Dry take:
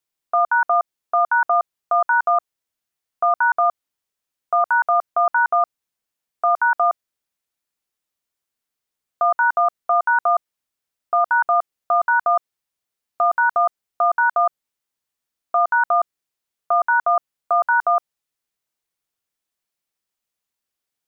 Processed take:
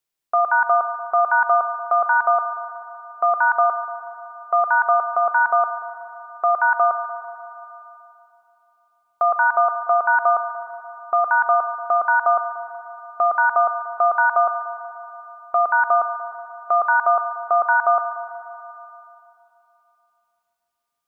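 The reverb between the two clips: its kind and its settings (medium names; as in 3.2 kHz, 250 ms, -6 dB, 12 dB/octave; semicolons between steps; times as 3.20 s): spring tank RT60 3 s, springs 36/60 ms, chirp 45 ms, DRR 9.5 dB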